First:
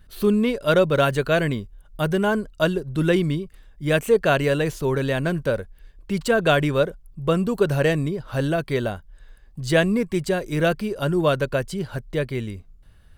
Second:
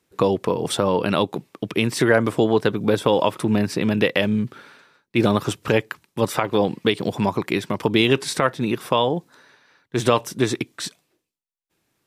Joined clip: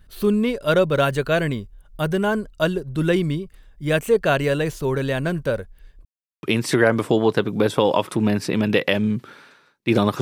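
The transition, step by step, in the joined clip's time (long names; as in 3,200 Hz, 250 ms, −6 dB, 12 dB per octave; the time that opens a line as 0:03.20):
first
0:06.05–0:06.43: silence
0:06.43: continue with second from 0:01.71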